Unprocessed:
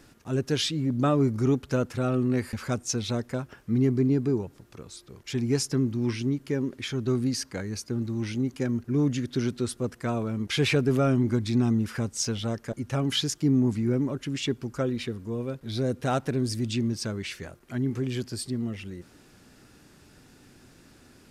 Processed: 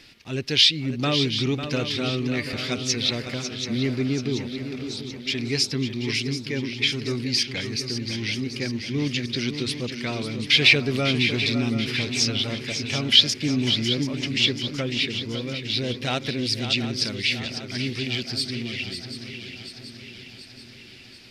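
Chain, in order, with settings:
flat-topped bell 3,200 Hz +15.5 dB
on a send: feedback echo with a long and a short gap by turns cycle 733 ms, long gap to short 3 to 1, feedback 54%, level −9 dB
on the sum: level −2 dB

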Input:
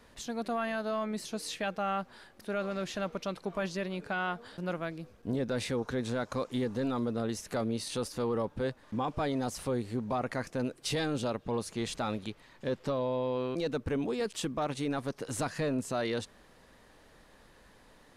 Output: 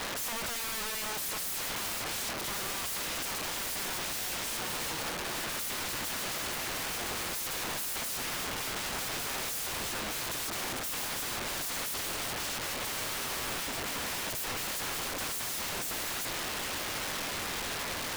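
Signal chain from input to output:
mid-hump overdrive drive 30 dB, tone 1,600 Hz, clips at −23.5 dBFS
feedback delay with all-pass diffusion 1,253 ms, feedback 59%, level −15.5 dB
wrap-around overflow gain 37.5 dB
level +7 dB

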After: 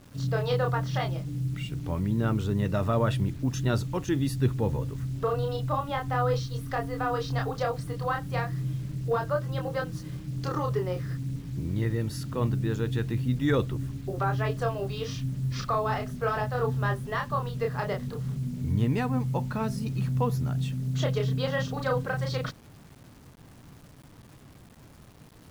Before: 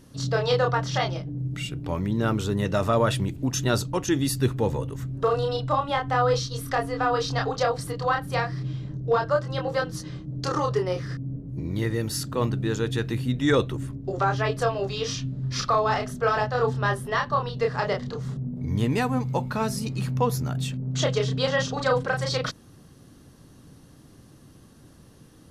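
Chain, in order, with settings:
bass and treble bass +6 dB, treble −7 dB
bit reduction 8 bits
level −5.5 dB

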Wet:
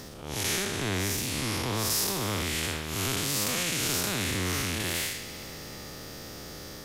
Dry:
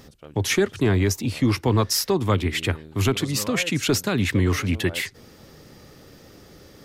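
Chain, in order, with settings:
spectrum smeared in time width 179 ms
bass and treble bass +4 dB, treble +4 dB
on a send: delay with a high-pass on its return 65 ms, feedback 84%, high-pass 2,100 Hz, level −20 dB
on the sum: every bin compressed towards the loudest bin 2 to 1
level −3 dB

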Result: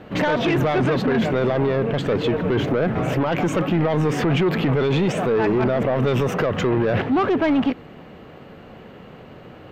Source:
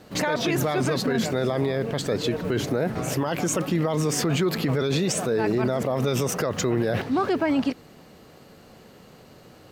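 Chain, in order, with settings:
flat-topped bell 6,800 Hz −14.5 dB
soft clipping −22 dBFS, distortion −13 dB
high-frequency loss of the air 56 metres
level +8 dB

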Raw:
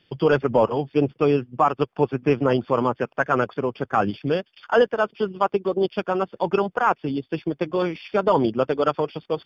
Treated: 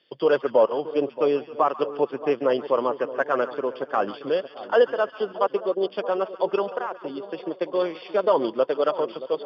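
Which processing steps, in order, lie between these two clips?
0:06.74–0:07.38: downward compressor 10 to 1, threshold −23 dBFS, peak gain reduction 10 dB
loudspeaker in its box 400–5,100 Hz, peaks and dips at 550 Hz +4 dB, 820 Hz −5 dB, 1,400 Hz −5 dB, 2,400 Hz −7 dB
echo with a time of its own for lows and highs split 1,000 Hz, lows 625 ms, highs 139 ms, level −14 dB

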